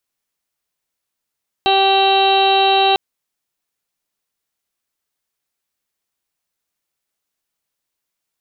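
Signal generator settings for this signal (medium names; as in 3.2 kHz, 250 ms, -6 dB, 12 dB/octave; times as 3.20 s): steady additive tone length 1.30 s, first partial 389 Hz, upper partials 5/-9/-13/-18.5/-18.5/-3.5/-5/-18.5/-1.5/-17.5 dB, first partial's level -18 dB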